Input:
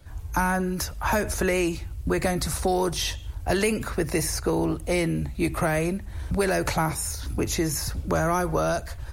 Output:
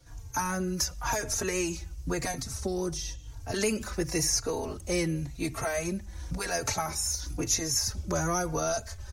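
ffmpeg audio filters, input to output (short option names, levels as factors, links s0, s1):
-filter_complex "[0:a]equalizer=f=6000:w=1.9:g=14,asettb=1/sr,asplit=3[s0][s1][s2];[s0]atrim=end=2.344[s3];[s1]atrim=start=2.34:end=3.54,asetpts=PTS-STARTPTS,afade=t=in:d=0.004:c=qsin,afade=t=out:st=1.196:d=0.004:c=qsin,acrossover=split=400[s4][s5];[s5]acompressor=threshold=0.0251:ratio=3[s6];[s4][s6]amix=inputs=2:normalize=0[s7];[s2]atrim=start=3.536[s8];[s3][s7]acrossfade=d=0.004:c1=hsin:c2=qsin[s9];[s9][s8]acrossfade=d=0.004:c1=qsin:c2=hsin,asplit=2[s10][s11];[s11]adelay=3.7,afreqshift=-0.95[s12];[s10][s12]amix=inputs=2:normalize=1,volume=0.668"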